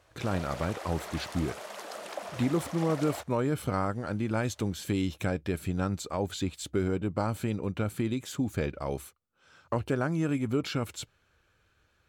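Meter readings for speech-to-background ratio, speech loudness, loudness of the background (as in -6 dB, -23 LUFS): 9.5 dB, -31.5 LUFS, -41.0 LUFS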